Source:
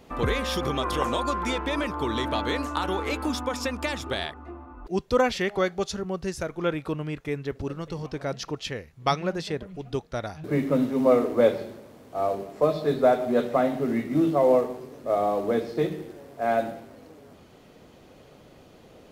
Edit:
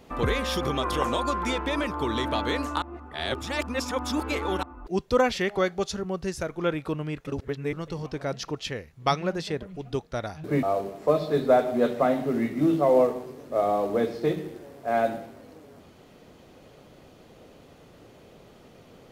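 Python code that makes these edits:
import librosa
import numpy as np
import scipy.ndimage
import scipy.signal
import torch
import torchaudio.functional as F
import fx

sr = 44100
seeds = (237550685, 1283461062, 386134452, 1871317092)

y = fx.edit(x, sr, fx.reverse_span(start_s=2.82, length_s=1.81),
    fx.reverse_span(start_s=7.27, length_s=0.46),
    fx.cut(start_s=10.63, length_s=1.54), tone=tone)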